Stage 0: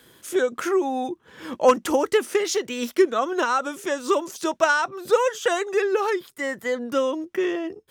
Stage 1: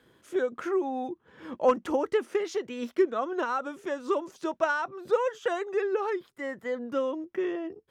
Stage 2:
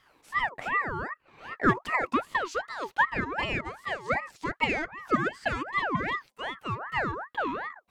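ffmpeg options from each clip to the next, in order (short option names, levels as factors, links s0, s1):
-af "lowpass=f=1600:p=1,volume=0.531"
-af "aeval=exprs='val(0)*sin(2*PI*1100*n/s+1100*0.45/2.6*sin(2*PI*2.6*n/s))':c=same,volume=1.26"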